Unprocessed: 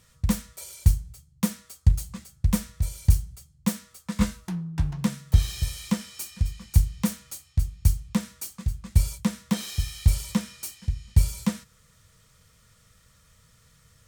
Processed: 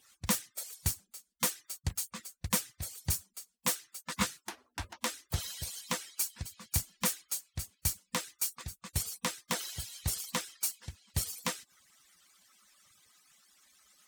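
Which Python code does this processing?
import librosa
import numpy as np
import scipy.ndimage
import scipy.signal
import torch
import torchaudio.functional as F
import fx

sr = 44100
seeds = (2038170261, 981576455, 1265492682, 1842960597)

y = fx.hpss_only(x, sr, part='percussive')
y = fx.highpass(y, sr, hz=810.0, slope=6)
y = y * 10.0 ** (3.5 / 20.0)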